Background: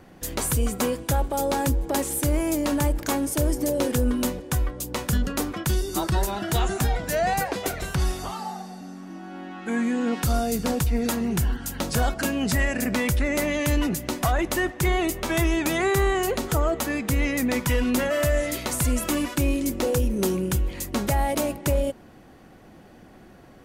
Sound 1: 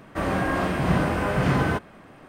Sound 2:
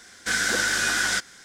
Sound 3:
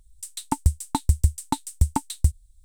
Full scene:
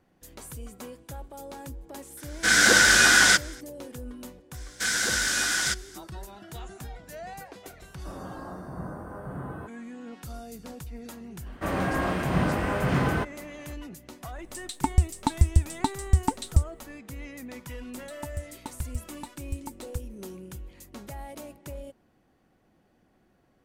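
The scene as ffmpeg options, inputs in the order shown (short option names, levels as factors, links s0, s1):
-filter_complex "[2:a]asplit=2[s0][s1];[1:a]asplit=2[s2][s3];[3:a]asplit=2[s4][s5];[0:a]volume=0.141[s6];[s0]dynaudnorm=f=120:g=5:m=3.76[s7];[s1]highshelf=f=3400:g=6.5[s8];[s2]asuperstop=centerf=3800:order=8:qfactor=0.52[s9];[s4]acrossover=split=8200[s10][s11];[s11]acompressor=threshold=0.00398:ratio=4:attack=1:release=60[s12];[s10][s12]amix=inputs=2:normalize=0[s13];[s7]atrim=end=1.44,asetpts=PTS-STARTPTS,volume=0.708,afade=t=in:d=0.004:c=hsin,afade=t=out:st=1.436:d=0.004:c=hsin,adelay=2170[s14];[s8]atrim=end=1.44,asetpts=PTS-STARTPTS,volume=0.562,afade=t=in:d=0.004:c=hsin,afade=t=out:st=1.436:d=0.004:c=hsin,adelay=4540[s15];[s9]atrim=end=2.28,asetpts=PTS-STARTPTS,volume=0.178,afade=t=in:d=0.004:c=hsin,afade=t=out:st=2.276:d=0.004:c=hsin,adelay=7890[s16];[s3]atrim=end=2.28,asetpts=PTS-STARTPTS,volume=0.708,afade=t=in:d=0.004:c=hsin,afade=t=out:st=2.276:d=0.004:c=hsin,adelay=505386S[s17];[s13]atrim=end=2.64,asetpts=PTS-STARTPTS,volume=0.944,afade=t=in:d=0.004:c=hsin,afade=t=out:st=2.636:d=0.004:c=hsin,adelay=14320[s18];[s5]atrim=end=2.64,asetpts=PTS-STARTPTS,volume=0.178,afade=t=in:d=0.004:c=hsin,afade=t=out:st=2.636:d=0.004:c=hsin,adelay=17710[s19];[s6][s14][s15][s16][s17][s18][s19]amix=inputs=7:normalize=0"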